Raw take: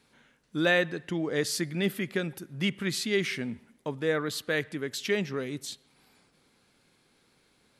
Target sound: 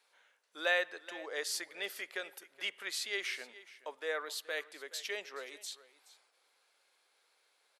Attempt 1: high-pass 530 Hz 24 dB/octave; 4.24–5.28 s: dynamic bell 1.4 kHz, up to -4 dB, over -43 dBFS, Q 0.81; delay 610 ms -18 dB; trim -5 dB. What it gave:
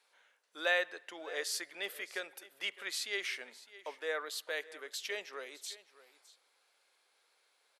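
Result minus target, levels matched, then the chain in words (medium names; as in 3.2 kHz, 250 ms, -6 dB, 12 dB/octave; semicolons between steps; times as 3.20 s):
echo 186 ms late
high-pass 530 Hz 24 dB/octave; 4.24–5.28 s: dynamic bell 1.4 kHz, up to -4 dB, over -43 dBFS, Q 0.81; delay 424 ms -18 dB; trim -5 dB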